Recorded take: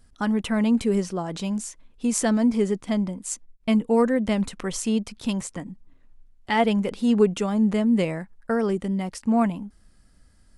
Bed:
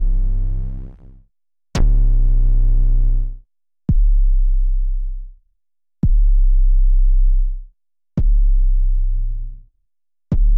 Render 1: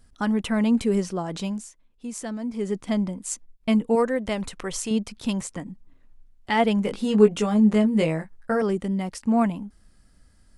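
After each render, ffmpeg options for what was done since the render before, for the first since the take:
ffmpeg -i in.wav -filter_complex "[0:a]asettb=1/sr,asplit=3[link_01][link_02][link_03];[link_01]atrim=end=3.954[link_04];[link_02]atrim=start=3.95:end=4.91,asetpts=PTS-STARTPTS,afade=type=in:duration=0.004:curve=qsin,afade=type=out:start_time=0.956:duration=0.004:curve=qsin,equalizer=frequency=220:width_type=o:width=0.77:gain=-7.5[link_05];[link_03]atrim=start=4.906[link_06];[link_04][link_05]acrossfade=duration=0.004:curve1=hsin:curve2=qsin[link_07];[link_07][link_06]acrossfade=duration=0.004:curve1=qsin:curve2=hsin,asettb=1/sr,asplit=3[link_08][link_09][link_10];[link_08]atrim=end=6.834[link_11];[link_09]atrim=start=6.83:end=8.62,asetpts=PTS-STARTPTS,afade=type=in:duration=0.004:curve=qsin,afade=type=out:start_time=1.786:duration=0.004:curve=qsin,asplit=2[link_12][link_13];[link_13]adelay=19,volume=-4dB[link_14];[link_12][link_14]amix=inputs=2:normalize=0,atrim=end_sample=78939[link_15];[link_10]atrim=start=8.616[link_16];[link_11][link_15]acrossfade=duration=0.004:curve1=hsin:curve2=qsin[link_17];[link_17][link_16]acrossfade=duration=0.004:curve1=qsin:curve2=hsin,asplit=3[link_18][link_19][link_20];[link_18]atrim=end=1.81,asetpts=PTS-STARTPTS,afade=type=out:start_time=1.45:duration=0.36:curve=qua:silence=0.298538[link_21];[link_19]atrim=start=1.81:end=2.42,asetpts=PTS-STARTPTS,volume=-10.5dB[link_22];[link_20]atrim=start=2.42,asetpts=PTS-STARTPTS,afade=type=in:duration=0.36:curve=qua:silence=0.298538[link_23];[link_21][link_22][link_23]concat=n=3:v=0:a=1" out.wav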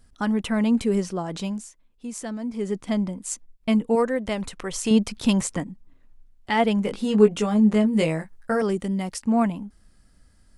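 ffmpeg -i in.wav -filter_complex "[0:a]asplit=3[link_01][link_02][link_03];[link_01]afade=type=out:start_time=4.84:duration=0.02[link_04];[link_02]acontrast=53,afade=type=in:start_time=4.84:duration=0.02,afade=type=out:start_time=5.63:duration=0.02[link_05];[link_03]afade=type=in:start_time=5.63:duration=0.02[link_06];[link_04][link_05][link_06]amix=inputs=3:normalize=0,asettb=1/sr,asplit=3[link_07][link_08][link_09];[link_07]atrim=end=7.934[link_10];[link_08]atrim=start=7.93:end=9.2,asetpts=PTS-STARTPTS,afade=type=in:duration=0.004:curve=qsin,afade=type=out:start_time=1.266:duration=0.004:curve=qsin,highshelf=frequency=3700:gain=6[link_11];[link_09]atrim=start=9.196[link_12];[link_10][link_11]acrossfade=duration=0.004:curve1=hsin:curve2=qsin[link_13];[link_13][link_12]acrossfade=duration=0.004:curve1=qsin:curve2=hsin" out.wav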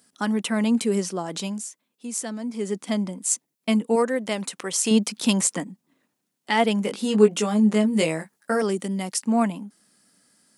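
ffmpeg -i in.wav -af "highpass=frequency=180:width=0.5412,highpass=frequency=180:width=1.3066,highshelf=frequency=4300:gain=10" out.wav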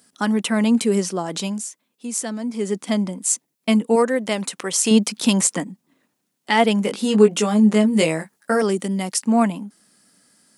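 ffmpeg -i in.wav -af "volume=4dB,alimiter=limit=-3dB:level=0:latency=1" out.wav

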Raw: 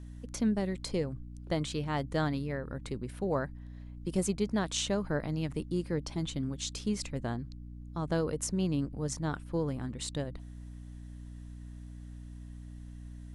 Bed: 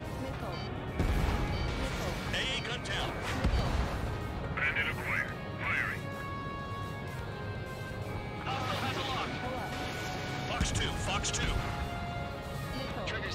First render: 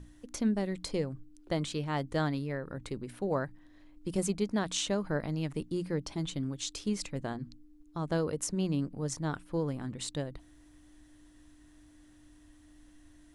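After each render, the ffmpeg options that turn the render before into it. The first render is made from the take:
ffmpeg -i in.wav -af "bandreject=frequency=60:width_type=h:width=6,bandreject=frequency=120:width_type=h:width=6,bandreject=frequency=180:width_type=h:width=6,bandreject=frequency=240:width_type=h:width=6" out.wav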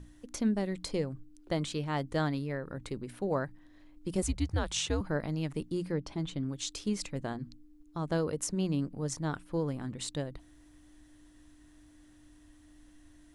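ffmpeg -i in.wav -filter_complex "[0:a]asettb=1/sr,asplit=3[link_01][link_02][link_03];[link_01]atrim=end=4.224[link_04];[link_02]atrim=start=4.22:end=5.01,asetpts=PTS-STARTPTS,afade=type=in:duration=0.004:curve=qsin,afade=type=out:start_time=0.786:duration=0.004:curve=qsin,afreqshift=-130[link_05];[link_03]atrim=start=5.006[link_06];[link_04][link_05]acrossfade=duration=0.004:curve1=hsin:curve2=qsin[link_07];[link_07][link_06]acrossfade=duration=0.004:curve1=qsin:curve2=hsin,asettb=1/sr,asplit=3[link_08][link_09][link_10];[link_08]atrim=end=5.924[link_11];[link_09]atrim=start=5.92:end=6.49,asetpts=PTS-STARTPTS,afade=type=in:duration=0.004:curve=qsin,afade=type=out:start_time=0.566:duration=0.004:curve=qsin,highshelf=frequency=5300:gain=-11[link_12];[link_10]atrim=start=6.486[link_13];[link_11][link_12]acrossfade=duration=0.004:curve1=hsin:curve2=qsin[link_14];[link_14][link_13]acrossfade=duration=0.004:curve1=qsin:curve2=hsin" out.wav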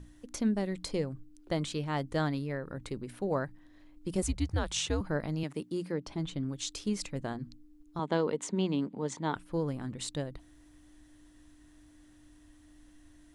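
ffmpeg -i in.wav -filter_complex "[0:a]asettb=1/sr,asplit=3[link_01][link_02][link_03];[link_01]atrim=end=5.434[link_04];[link_02]atrim=start=5.43:end=6.07,asetpts=PTS-STARTPTS,afade=type=in:duration=0.004:curve=qsin,afade=type=out:start_time=0.636:duration=0.004:curve=qsin,highpass=180[link_05];[link_03]atrim=start=6.066[link_06];[link_04][link_05]acrossfade=duration=0.004:curve1=hsin:curve2=qsin[link_07];[link_07][link_06]acrossfade=duration=0.004:curve1=qsin:curve2=hsin,asettb=1/sr,asplit=3[link_08][link_09][link_10];[link_08]atrim=end=7.994[link_11];[link_09]atrim=start=7.99:end=9.36,asetpts=PTS-STARTPTS,afade=type=in:duration=0.004:curve=qsin,afade=type=out:start_time=1.366:duration=0.004:curve=qsin,highpass=190,equalizer=frequency=220:width_type=q:width=4:gain=8,equalizer=frequency=410:width_type=q:width=4:gain=5,equalizer=frequency=920:width_type=q:width=4:gain=9,equalizer=frequency=2100:width_type=q:width=4:gain=6,equalizer=frequency=3400:width_type=q:width=4:gain=8,equalizer=frequency=5400:width_type=q:width=4:gain=-9,lowpass=frequency=7600:width=0.5412,lowpass=frequency=7600:width=1.3066[link_12];[link_10]atrim=start=9.356[link_13];[link_11][link_12]acrossfade=duration=0.004:curve1=hsin:curve2=qsin[link_14];[link_14][link_13]acrossfade=duration=0.004:curve1=qsin:curve2=hsin" out.wav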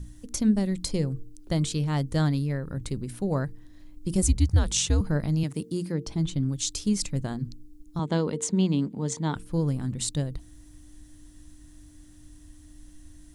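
ffmpeg -i in.wav -af "bass=frequency=250:gain=12,treble=frequency=4000:gain=11,bandreject=frequency=113.8:width_type=h:width=4,bandreject=frequency=227.6:width_type=h:width=4,bandreject=frequency=341.4:width_type=h:width=4,bandreject=frequency=455.2:width_type=h:width=4" out.wav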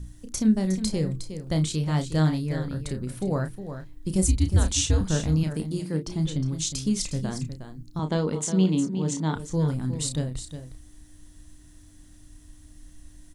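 ffmpeg -i in.wav -filter_complex "[0:a]asplit=2[link_01][link_02];[link_02]adelay=32,volume=-8dB[link_03];[link_01][link_03]amix=inputs=2:normalize=0,aecho=1:1:361:0.316" out.wav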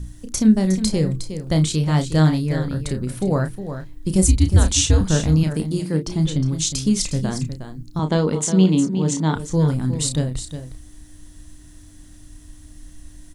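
ffmpeg -i in.wav -af "volume=6.5dB" out.wav

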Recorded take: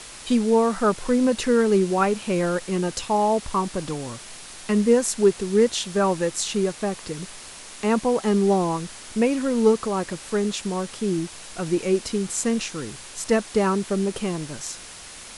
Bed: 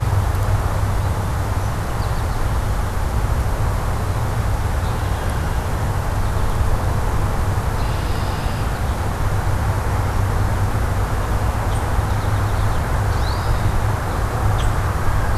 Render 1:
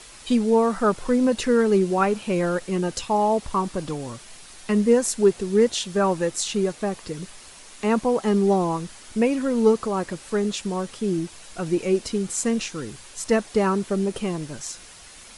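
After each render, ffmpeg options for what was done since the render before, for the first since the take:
ffmpeg -i in.wav -af "afftdn=noise_reduction=6:noise_floor=-41" out.wav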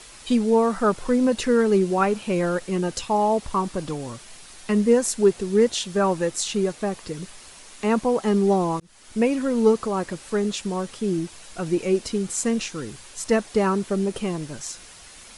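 ffmpeg -i in.wav -filter_complex "[0:a]asplit=2[link_01][link_02];[link_01]atrim=end=8.8,asetpts=PTS-STARTPTS,afade=type=out:start_time=8.796:duration=0.004:curve=hsin[link_03];[link_02]atrim=start=8.8,asetpts=PTS-STARTPTS,afade=type=in:duration=0.42[link_04];[link_03][link_04]concat=n=2:v=0:a=1" out.wav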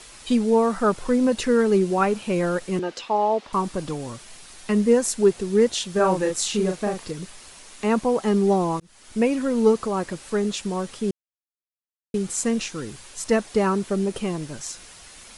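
ffmpeg -i in.wav -filter_complex "[0:a]asettb=1/sr,asplit=3[link_01][link_02][link_03];[link_01]atrim=end=2.794[link_04];[link_02]atrim=start=2.79:end=3.53,asetpts=PTS-STARTPTS,afade=type=in:duration=0.004:curve=qsin,afade=type=out:start_time=0.736:duration=0.004:curve=qsin,acrossover=split=240 5200:gain=0.0708 1 0.112[link_05][link_06][link_07];[link_05][link_06][link_07]amix=inputs=3:normalize=0[link_08];[link_03]atrim=start=3.526[link_09];[link_04][link_08]acrossfade=duration=0.004:curve1=hsin:curve2=qsin[link_10];[link_10][link_09]acrossfade=duration=0.004:curve1=qsin:curve2=hsin,asettb=1/sr,asplit=3[link_11][link_12][link_13];[link_11]atrim=end=5.924[link_14];[link_12]atrim=start=5.92:end=7.11,asetpts=PTS-STARTPTS,afade=type=in:duration=0.004:curve=qsin,afade=type=out:start_time=1.186:duration=0.004:curve=qsin,asplit=2[link_15][link_16];[link_16]adelay=38,volume=-4dB[link_17];[link_15][link_17]amix=inputs=2:normalize=0,atrim=end_sample=52479[link_18];[link_13]atrim=start=7.106[link_19];[link_14][link_18]acrossfade=duration=0.004:curve1=hsin:curve2=qsin[link_20];[link_20][link_19]acrossfade=duration=0.004:curve1=qsin:curve2=hsin,asplit=3[link_21][link_22][link_23];[link_21]atrim=end=11.11,asetpts=PTS-STARTPTS,afade=type=out:start_time=11.106:duration=0.004:curve=hsin[link_24];[link_22]atrim=start=11.11:end=12.14,asetpts=PTS-STARTPTS,volume=0[link_25];[link_23]atrim=start=12.14,asetpts=PTS-STARTPTS,afade=type=in:duration=0.004:curve=hsin[link_26];[link_24][link_25][link_26]concat=n=3:v=0:a=1" out.wav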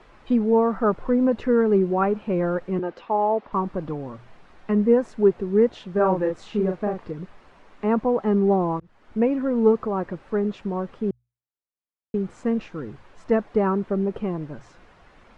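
ffmpeg -i in.wav -af "lowpass=1400,bandreject=frequency=60:width_type=h:width=6,bandreject=frequency=120:width_type=h:width=6" out.wav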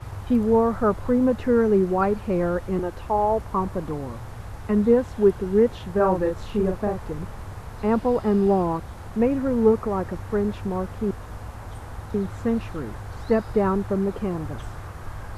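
ffmpeg -i in.wav -i bed.wav -filter_complex "[1:a]volume=-17dB[link_01];[0:a][link_01]amix=inputs=2:normalize=0" out.wav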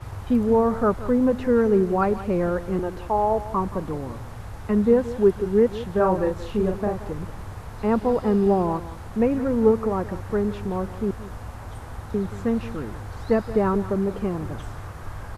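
ffmpeg -i in.wav -af "aecho=1:1:176:0.178" out.wav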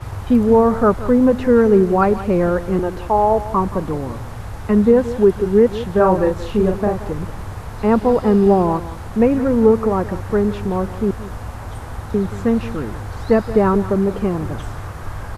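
ffmpeg -i in.wav -af "volume=6.5dB,alimiter=limit=-3dB:level=0:latency=1" out.wav

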